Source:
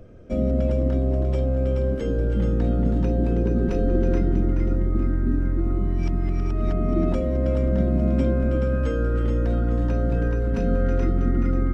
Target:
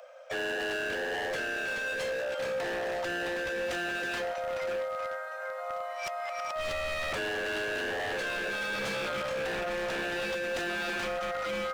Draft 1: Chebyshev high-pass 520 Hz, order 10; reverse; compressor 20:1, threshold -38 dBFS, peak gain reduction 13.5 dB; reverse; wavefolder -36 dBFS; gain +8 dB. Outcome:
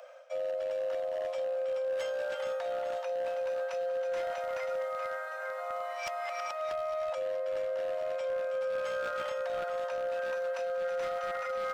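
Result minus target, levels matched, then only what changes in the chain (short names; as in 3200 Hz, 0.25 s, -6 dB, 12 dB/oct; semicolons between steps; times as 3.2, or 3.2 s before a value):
compressor: peak gain reduction +10 dB
change: compressor 20:1, threshold -27.5 dBFS, peak gain reduction 4 dB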